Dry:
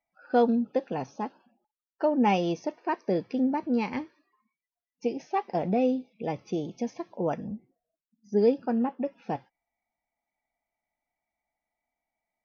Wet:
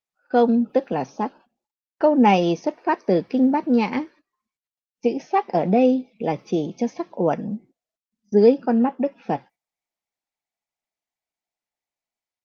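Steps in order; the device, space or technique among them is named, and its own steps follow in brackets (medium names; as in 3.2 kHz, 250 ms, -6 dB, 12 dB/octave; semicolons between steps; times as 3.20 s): video call (high-pass 140 Hz 24 dB/octave; level rider gain up to 4.5 dB; gate -49 dBFS, range -17 dB; trim +3.5 dB; Opus 24 kbps 48 kHz)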